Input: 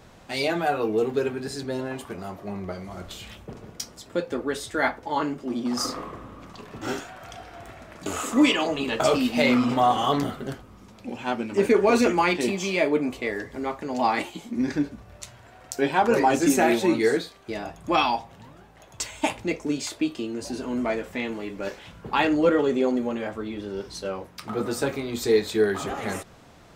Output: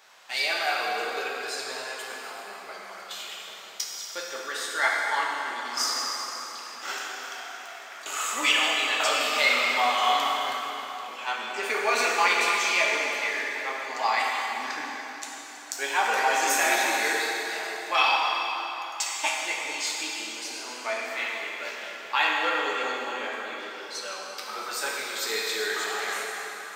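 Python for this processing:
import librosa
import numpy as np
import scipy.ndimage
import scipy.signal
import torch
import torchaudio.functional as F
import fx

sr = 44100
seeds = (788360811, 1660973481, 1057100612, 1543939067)

y = scipy.signal.sosfilt(scipy.signal.butter(2, 1200.0, 'highpass', fs=sr, output='sos'), x)
y = fx.peak_eq(y, sr, hz=9900.0, db=-5.5, octaves=0.36)
y = fx.rev_plate(y, sr, seeds[0], rt60_s=4.0, hf_ratio=0.8, predelay_ms=0, drr_db=-3.0)
y = y * 10.0 ** (1.5 / 20.0)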